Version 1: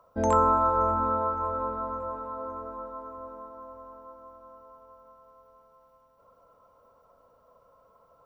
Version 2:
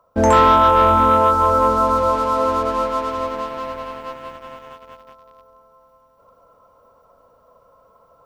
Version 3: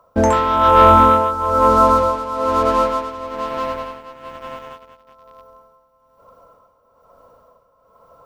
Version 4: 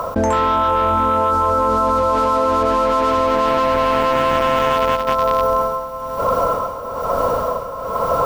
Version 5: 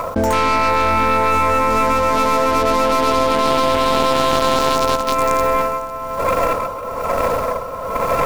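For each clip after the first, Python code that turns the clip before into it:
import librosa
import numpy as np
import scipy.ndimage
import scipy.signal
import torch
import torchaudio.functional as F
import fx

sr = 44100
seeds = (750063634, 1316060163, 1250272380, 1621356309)

y1 = fx.leveller(x, sr, passes=2)
y1 = fx.rider(y1, sr, range_db=4, speed_s=2.0)
y1 = y1 * librosa.db_to_amplitude(7.0)
y2 = y1 * (1.0 - 0.73 / 2.0 + 0.73 / 2.0 * np.cos(2.0 * np.pi * 1.1 * (np.arange(len(y1)) / sr)))
y2 = y2 * librosa.db_to_amplitude(5.0)
y3 = fx.env_flatten(y2, sr, amount_pct=100)
y3 = y3 * librosa.db_to_amplitude(-8.5)
y4 = fx.tracing_dist(y3, sr, depth_ms=0.3)
y4 = y4 + 10.0 ** (-17.5 / 20.0) * np.pad(y4, (int(502 * sr / 1000.0), 0))[:len(y4)]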